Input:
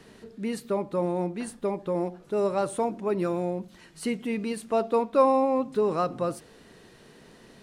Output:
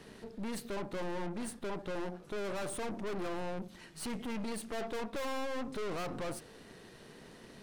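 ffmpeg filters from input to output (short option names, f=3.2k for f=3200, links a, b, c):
-af "bandreject=f=7.1k:w=24,aeval=exprs='(tanh(89.1*val(0)+0.7)-tanh(0.7))/89.1':c=same,volume=2.5dB"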